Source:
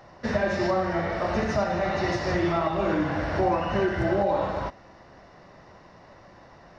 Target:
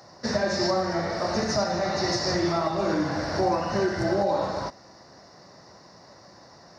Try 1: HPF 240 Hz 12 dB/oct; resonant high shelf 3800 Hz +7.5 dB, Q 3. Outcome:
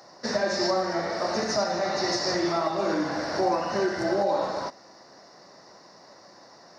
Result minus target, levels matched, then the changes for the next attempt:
125 Hz band -7.0 dB
change: HPF 100 Hz 12 dB/oct

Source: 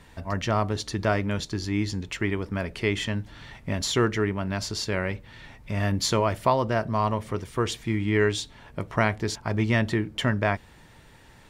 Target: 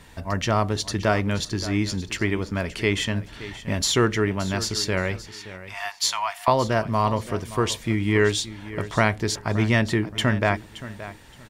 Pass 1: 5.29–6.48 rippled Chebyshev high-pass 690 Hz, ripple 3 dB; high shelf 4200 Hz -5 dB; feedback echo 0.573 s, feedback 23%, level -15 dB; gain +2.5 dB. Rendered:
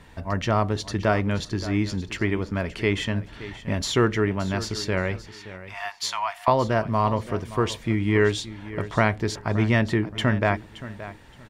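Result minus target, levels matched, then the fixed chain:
8000 Hz band -6.5 dB
5.29–6.48 rippled Chebyshev high-pass 690 Hz, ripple 3 dB; high shelf 4200 Hz +5 dB; feedback echo 0.573 s, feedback 23%, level -15 dB; gain +2.5 dB

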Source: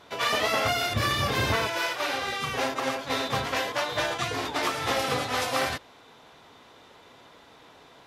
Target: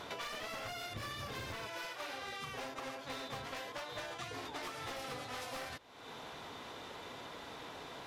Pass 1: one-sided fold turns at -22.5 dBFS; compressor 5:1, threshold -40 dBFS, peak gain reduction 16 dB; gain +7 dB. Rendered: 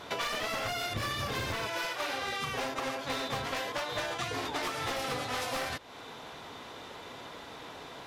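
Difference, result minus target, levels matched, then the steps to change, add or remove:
compressor: peak gain reduction -9 dB
change: compressor 5:1, threshold -51.5 dBFS, peak gain reduction 25 dB

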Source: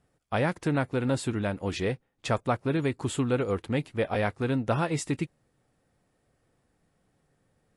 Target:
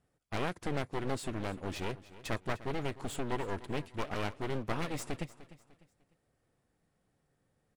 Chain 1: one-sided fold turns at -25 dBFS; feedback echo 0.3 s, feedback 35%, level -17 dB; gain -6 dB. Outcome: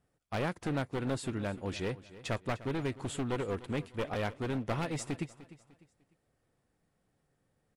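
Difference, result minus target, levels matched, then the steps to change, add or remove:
one-sided fold: distortion -11 dB
change: one-sided fold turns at -33.5 dBFS

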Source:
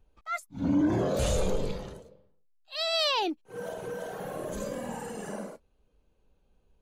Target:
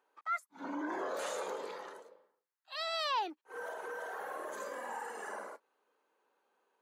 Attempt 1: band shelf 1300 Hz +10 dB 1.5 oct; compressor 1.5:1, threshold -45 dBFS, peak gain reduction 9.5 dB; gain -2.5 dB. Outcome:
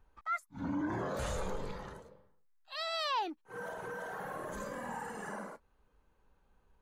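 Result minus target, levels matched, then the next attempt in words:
250 Hz band +5.0 dB
HPF 340 Hz 24 dB/oct; band shelf 1300 Hz +10 dB 1.5 oct; compressor 1.5:1, threshold -45 dBFS, peak gain reduction 9.5 dB; gain -2.5 dB

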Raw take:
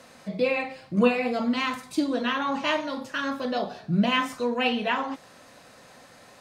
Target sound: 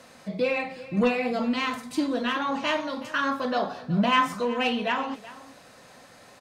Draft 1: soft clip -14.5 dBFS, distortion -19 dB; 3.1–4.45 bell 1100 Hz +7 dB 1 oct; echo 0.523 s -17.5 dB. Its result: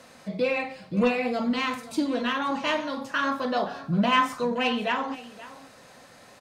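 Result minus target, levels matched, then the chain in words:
echo 0.149 s late
soft clip -14.5 dBFS, distortion -19 dB; 3.1–4.45 bell 1100 Hz +7 dB 1 oct; echo 0.374 s -17.5 dB

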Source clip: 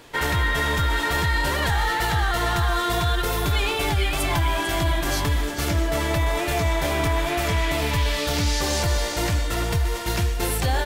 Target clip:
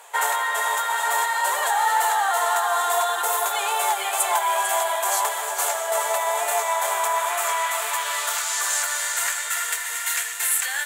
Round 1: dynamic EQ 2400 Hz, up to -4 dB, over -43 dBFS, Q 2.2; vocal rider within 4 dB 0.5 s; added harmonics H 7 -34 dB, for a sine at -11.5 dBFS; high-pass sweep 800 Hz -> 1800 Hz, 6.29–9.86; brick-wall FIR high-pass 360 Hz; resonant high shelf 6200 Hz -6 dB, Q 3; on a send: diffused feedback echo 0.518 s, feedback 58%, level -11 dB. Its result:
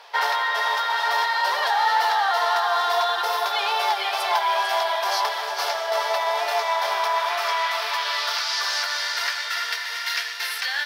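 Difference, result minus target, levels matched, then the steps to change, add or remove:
8000 Hz band -12.5 dB
change: resonant high shelf 6200 Hz +6 dB, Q 3

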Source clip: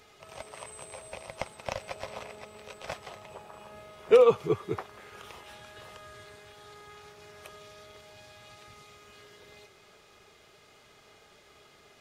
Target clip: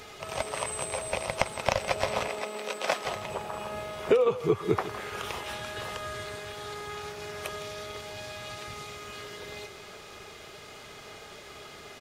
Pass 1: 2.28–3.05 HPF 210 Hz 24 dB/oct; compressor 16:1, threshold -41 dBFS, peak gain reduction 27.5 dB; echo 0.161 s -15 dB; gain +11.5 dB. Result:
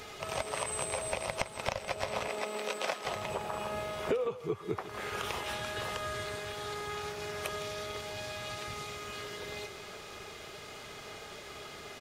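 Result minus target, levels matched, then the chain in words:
compressor: peak gain reduction +9.5 dB
2.28–3.05 HPF 210 Hz 24 dB/oct; compressor 16:1, threshold -31 dBFS, peak gain reduction 18 dB; echo 0.161 s -15 dB; gain +11.5 dB

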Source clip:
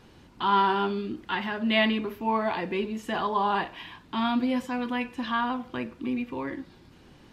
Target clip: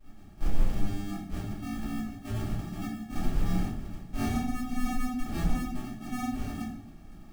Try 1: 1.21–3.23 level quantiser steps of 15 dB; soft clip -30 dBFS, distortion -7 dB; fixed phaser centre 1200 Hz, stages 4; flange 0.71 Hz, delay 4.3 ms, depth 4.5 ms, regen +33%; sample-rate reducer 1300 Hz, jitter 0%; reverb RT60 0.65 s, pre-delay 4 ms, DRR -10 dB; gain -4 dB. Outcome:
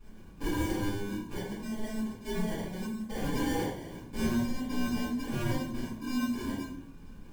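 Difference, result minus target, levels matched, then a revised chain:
sample-rate reducer: distortion -23 dB
1.21–3.23 level quantiser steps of 15 dB; soft clip -30 dBFS, distortion -7 dB; fixed phaser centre 1200 Hz, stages 4; flange 0.71 Hz, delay 4.3 ms, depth 4.5 ms, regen +33%; sample-rate reducer 500 Hz, jitter 0%; reverb RT60 0.65 s, pre-delay 4 ms, DRR -10 dB; gain -4 dB

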